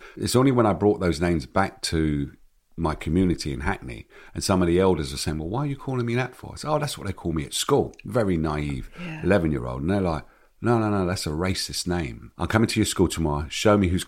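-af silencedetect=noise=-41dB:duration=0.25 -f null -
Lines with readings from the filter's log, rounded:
silence_start: 2.34
silence_end: 2.78 | silence_duration: 0.44
silence_start: 10.23
silence_end: 10.62 | silence_duration: 0.39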